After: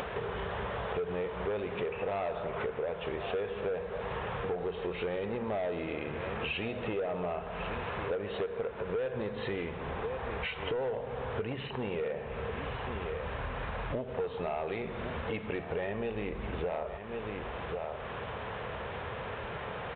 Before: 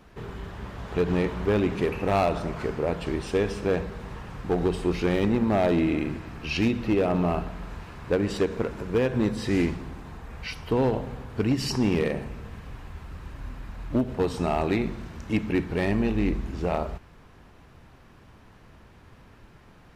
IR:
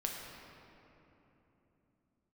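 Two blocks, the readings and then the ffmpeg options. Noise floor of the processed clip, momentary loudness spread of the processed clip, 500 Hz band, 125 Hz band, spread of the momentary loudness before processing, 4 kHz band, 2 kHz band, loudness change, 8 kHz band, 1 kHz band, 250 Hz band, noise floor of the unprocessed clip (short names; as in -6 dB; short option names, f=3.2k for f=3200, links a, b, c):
-41 dBFS, 5 LU, -6.0 dB, -10.5 dB, 16 LU, -5.5 dB, -3.5 dB, -9.5 dB, under -30 dB, -4.5 dB, -14.5 dB, -52 dBFS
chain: -filter_complex "[0:a]highpass=60,lowshelf=f=380:t=q:w=3:g=-6.5,asplit=2[a][b];[b]aecho=0:1:1095:0.0944[c];[a][c]amix=inputs=2:normalize=0,acompressor=mode=upward:threshold=-28dB:ratio=2.5,asoftclip=type=tanh:threshold=-19.5dB,acompressor=threshold=-35dB:ratio=6,aresample=8000,aresample=44100,volume=3dB"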